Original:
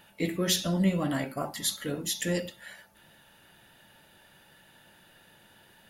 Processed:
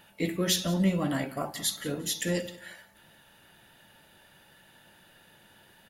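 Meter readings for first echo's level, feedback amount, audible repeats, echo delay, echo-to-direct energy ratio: −18.5 dB, 24%, 2, 178 ms, −18.0 dB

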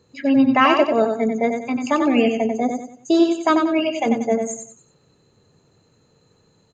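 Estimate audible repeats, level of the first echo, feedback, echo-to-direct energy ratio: 4, −5.5 dB, 35%, −5.0 dB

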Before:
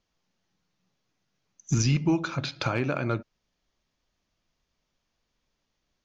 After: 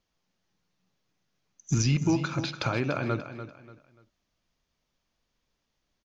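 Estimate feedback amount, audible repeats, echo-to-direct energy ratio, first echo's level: 30%, 3, −10.5 dB, −11.0 dB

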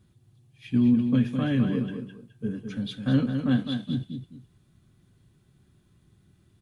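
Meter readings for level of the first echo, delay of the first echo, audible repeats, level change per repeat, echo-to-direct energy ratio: −7.0 dB, 209 ms, 2, −10.5 dB, −6.5 dB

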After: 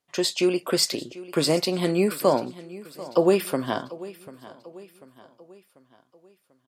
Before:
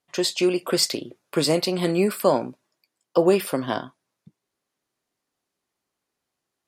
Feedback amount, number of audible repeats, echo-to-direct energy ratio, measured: 48%, 3, −17.0 dB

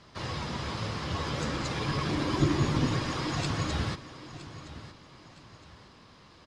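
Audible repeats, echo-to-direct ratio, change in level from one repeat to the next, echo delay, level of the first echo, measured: 2, −14.5 dB, −9.0 dB, 965 ms, −15.0 dB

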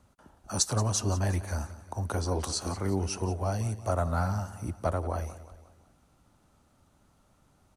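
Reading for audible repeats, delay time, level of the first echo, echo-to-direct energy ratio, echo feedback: 4, 179 ms, −15.5 dB, −14.5 dB, 48%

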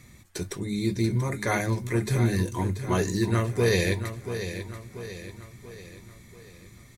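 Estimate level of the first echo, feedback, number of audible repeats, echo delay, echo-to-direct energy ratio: −10.0 dB, 49%, 5, 685 ms, −9.0 dB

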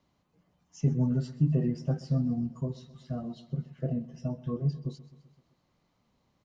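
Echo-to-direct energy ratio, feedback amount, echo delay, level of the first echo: −16.5 dB, 57%, 129 ms, −18.0 dB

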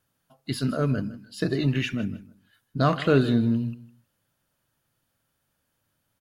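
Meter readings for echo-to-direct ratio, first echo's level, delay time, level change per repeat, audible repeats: −17.0 dB, −17.0 dB, 157 ms, −13.5 dB, 2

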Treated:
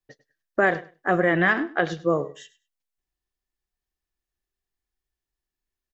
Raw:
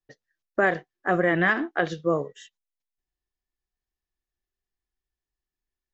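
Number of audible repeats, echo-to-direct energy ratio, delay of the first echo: 2, −18.0 dB, 100 ms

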